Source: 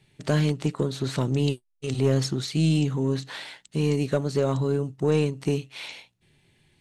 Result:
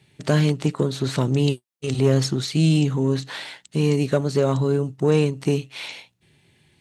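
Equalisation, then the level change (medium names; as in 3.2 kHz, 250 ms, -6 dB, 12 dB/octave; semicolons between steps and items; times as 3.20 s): high-pass 56 Hz; +4.0 dB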